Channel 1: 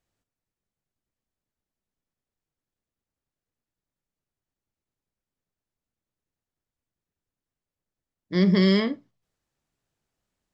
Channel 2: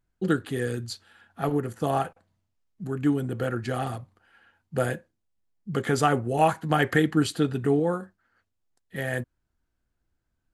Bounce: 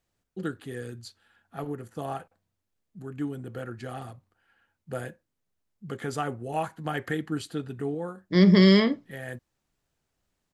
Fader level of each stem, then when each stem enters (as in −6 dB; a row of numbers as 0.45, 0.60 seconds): +2.5, −8.5 decibels; 0.00, 0.15 seconds